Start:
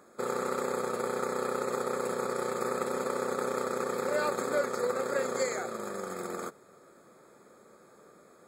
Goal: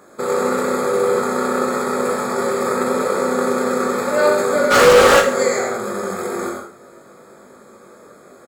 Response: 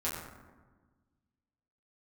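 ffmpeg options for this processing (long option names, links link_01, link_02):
-filter_complex "[0:a]asplit=2[link_01][link_02];[1:a]atrim=start_sample=2205,atrim=end_sample=4410,adelay=83[link_03];[link_02][link_03]afir=irnorm=-1:irlink=0,volume=-6.5dB[link_04];[link_01][link_04]amix=inputs=2:normalize=0,asplit=3[link_05][link_06][link_07];[link_05]afade=type=out:start_time=4.7:duration=0.02[link_08];[link_06]asplit=2[link_09][link_10];[link_10]highpass=frequency=720:poles=1,volume=35dB,asoftclip=type=tanh:threshold=-15dB[link_11];[link_09][link_11]amix=inputs=2:normalize=0,lowpass=frequency=4900:poles=1,volume=-6dB,afade=type=in:start_time=4.7:duration=0.02,afade=type=out:start_time=5.19:duration=0.02[link_12];[link_07]afade=type=in:start_time=5.19:duration=0.02[link_13];[link_08][link_12][link_13]amix=inputs=3:normalize=0,asplit=2[link_14][link_15];[link_15]aecho=0:1:20|43|69.45|99.87|134.8:0.631|0.398|0.251|0.158|0.1[link_16];[link_14][link_16]amix=inputs=2:normalize=0,volume=8.5dB"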